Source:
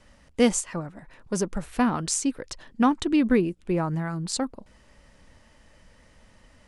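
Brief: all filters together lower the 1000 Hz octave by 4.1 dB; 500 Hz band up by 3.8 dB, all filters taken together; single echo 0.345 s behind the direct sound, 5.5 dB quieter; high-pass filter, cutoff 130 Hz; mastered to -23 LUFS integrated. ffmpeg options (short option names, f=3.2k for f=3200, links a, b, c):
-af "highpass=130,equalizer=f=500:t=o:g=6,equalizer=f=1k:t=o:g=-8,aecho=1:1:345:0.531,volume=1dB"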